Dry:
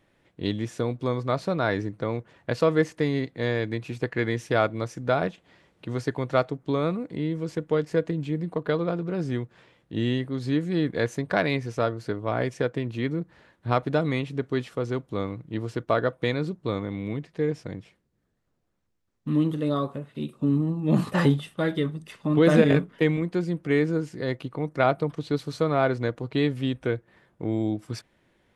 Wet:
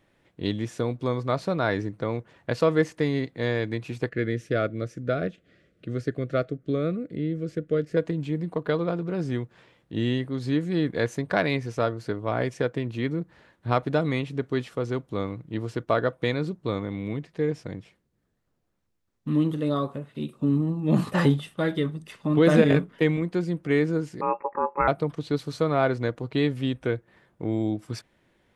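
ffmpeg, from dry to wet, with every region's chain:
ffmpeg -i in.wav -filter_complex "[0:a]asettb=1/sr,asplit=3[link_01][link_02][link_03];[link_01]atrim=end=4.094[link_04];[link_02]atrim=start=4.09:end=7.97,asetpts=PTS-STARTPTS,afade=type=in:duration=0.004:curve=qsin,afade=type=out:start_time=3.876:duration=0.004:curve=qsin,asuperstop=centerf=900:order=4:qfactor=1.4,highshelf=frequency=2100:gain=-8.5[link_05];[link_03]atrim=start=7.966[link_06];[link_04][link_05]acrossfade=duration=0.004:curve1=hsin:curve2=qsin[link_07];[link_07][link_06]acrossfade=duration=0.004:curve1=qsin:curve2=hsin,asettb=1/sr,asplit=3[link_08][link_09][link_10];[link_08]atrim=end=24.214[link_11];[link_09]atrim=start=24.21:end=24.88,asetpts=PTS-STARTPTS,afade=type=in:duration=0.004:curve=qsin,afade=type=out:start_time=0.666:duration=0.004:curve=qsin,tiltshelf=frequency=790:gain=9.5,aeval=exprs='val(0)*sin(2*PI*2000*n/s)':channel_layout=same,lowpass=frequency=2300:width_type=q:width=0.5098,lowpass=frequency=2300:width_type=q:width=0.6013,lowpass=frequency=2300:width_type=q:width=0.9,lowpass=frequency=2300:width_type=q:width=2.563,afreqshift=-2700[link_12];[link_10]atrim=start=24.876[link_13];[link_11][link_12]acrossfade=duration=0.004:curve1=hsin:curve2=qsin[link_14];[link_14][link_13]acrossfade=duration=0.004:curve1=qsin:curve2=hsin" out.wav

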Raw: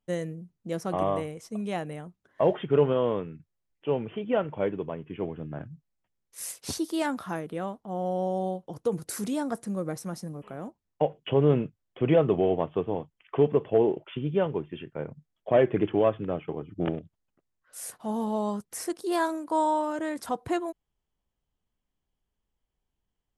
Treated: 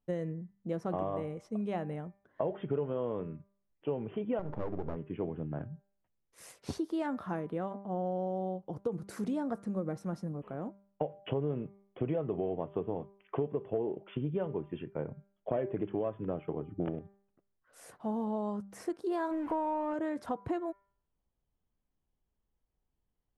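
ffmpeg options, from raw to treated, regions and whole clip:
ffmpeg -i in.wav -filter_complex "[0:a]asettb=1/sr,asplit=3[link_01][link_02][link_03];[link_01]atrim=end=4.394[link_04];[link_02]atrim=start=4.39:end=4.96,asetpts=PTS-STARTPTS,afade=type=in:duration=0.004:curve=qsin,afade=type=out:start_time=0.566:duration=0.004:curve=qsin,tiltshelf=frequency=1400:gain=8.5,acompressor=threshold=-25dB:ratio=2.5:attack=3.2:release=140:knee=1:detection=peak,aeval=exprs='max(val(0),0)':channel_layout=same[link_05];[link_03]atrim=start=4.956[link_06];[link_04][link_05]acrossfade=duration=0.004:curve1=hsin:curve2=qsin[link_07];[link_07][link_06]acrossfade=duration=0.004:curve1=qsin:curve2=hsin,asettb=1/sr,asplit=3[link_08][link_09][link_10];[link_08]atrim=end=19.314[link_11];[link_09]atrim=start=19.31:end=19.94,asetpts=PTS-STARTPTS,afade=type=in:duration=0.004:curve=qsin,afade=type=out:start_time=0.626:duration=0.004:curve=qsin,aeval=exprs='val(0)+0.5*0.0168*sgn(val(0))':channel_layout=same,highshelf=frequency=3100:width_type=q:width=1.5:gain=-8[link_12];[link_10]atrim=start=19.936[link_13];[link_11][link_12]acrossfade=duration=0.004:curve1=hsin:curve2=qsin[link_14];[link_14][link_13]acrossfade=duration=0.004:curve1=qsin:curve2=hsin,lowpass=frequency=1100:poles=1,bandreject=frequency=198.1:width_type=h:width=4,bandreject=frequency=396.2:width_type=h:width=4,bandreject=frequency=594.3:width_type=h:width=4,bandreject=frequency=792.4:width_type=h:width=4,bandreject=frequency=990.5:width_type=h:width=4,bandreject=frequency=1188.6:width_type=h:width=4,bandreject=frequency=1386.7:width_type=h:width=4,bandreject=frequency=1584.8:width_type=h:width=4,bandreject=frequency=1782.9:width_type=h:width=4,bandreject=frequency=1981:width_type=h:width=4,bandreject=frequency=2179.1:width_type=h:width=4,bandreject=frequency=2377.2:width_type=h:width=4,acompressor=threshold=-30dB:ratio=6" out.wav

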